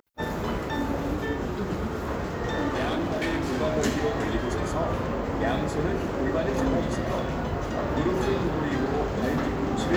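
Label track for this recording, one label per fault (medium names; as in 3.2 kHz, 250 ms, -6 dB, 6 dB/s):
2.680000	3.600000	clipped -23 dBFS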